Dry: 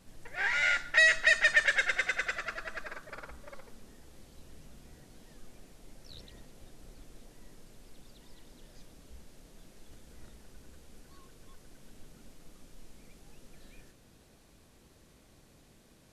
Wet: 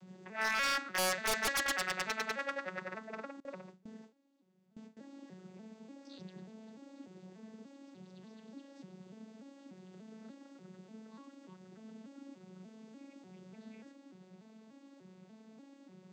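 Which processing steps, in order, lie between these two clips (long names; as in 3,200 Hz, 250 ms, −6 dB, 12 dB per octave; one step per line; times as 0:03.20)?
vocoder with an arpeggio as carrier minor triad, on F#3, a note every 294 ms
wave folding −26 dBFS
0:03.40–0:04.97: noise gate with hold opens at −42 dBFS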